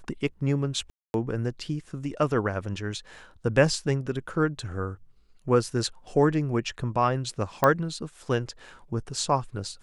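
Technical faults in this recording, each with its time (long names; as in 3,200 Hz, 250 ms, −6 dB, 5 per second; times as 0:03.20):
0:00.90–0:01.14: drop-out 241 ms
0:07.64: click −8 dBFS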